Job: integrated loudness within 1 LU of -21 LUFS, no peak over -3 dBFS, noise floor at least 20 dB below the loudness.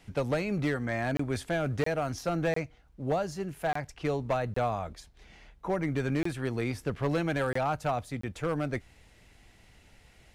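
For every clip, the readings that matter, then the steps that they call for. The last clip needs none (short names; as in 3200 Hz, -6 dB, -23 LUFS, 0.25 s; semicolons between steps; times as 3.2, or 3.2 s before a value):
clipped 0.9%; flat tops at -21.5 dBFS; dropouts 8; longest dropout 24 ms; loudness -31.5 LUFS; peak -21.5 dBFS; loudness target -21.0 LUFS
-> clip repair -21.5 dBFS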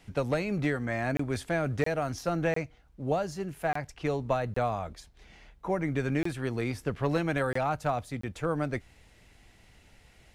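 clipped 0.0%; dropouts 8; longest dropout 24 ms
-> interpolate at 1.17/1.84/2.54/3.73/4.54/6.23/7.53/8.21, 24 ms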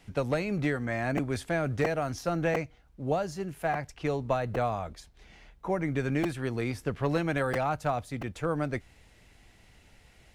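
dropouts 0; loudness -31.0 LUFS; peak -15.0 dBFS; loudness target -21.0 LUFS
-> gain +10 dB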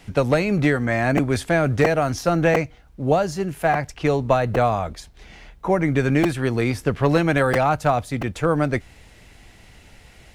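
loudness -21.0 LUFS; peak -5.0 dBFS; noise floor -49 dBFS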